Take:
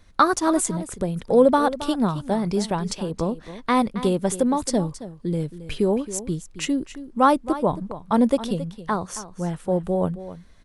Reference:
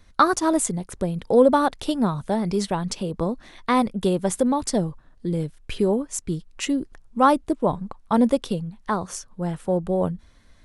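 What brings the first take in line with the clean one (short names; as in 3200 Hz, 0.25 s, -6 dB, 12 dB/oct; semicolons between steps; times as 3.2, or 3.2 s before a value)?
expander -37 dBFS, range -21 dB; inverse comb 0.271 s -14 dB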